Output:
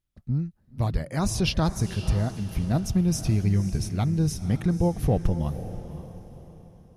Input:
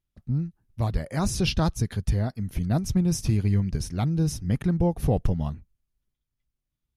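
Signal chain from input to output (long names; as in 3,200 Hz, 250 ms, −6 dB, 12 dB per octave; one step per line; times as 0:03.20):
feedback delay with all-pass diffusion 527 ms, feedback 41%, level −12 dB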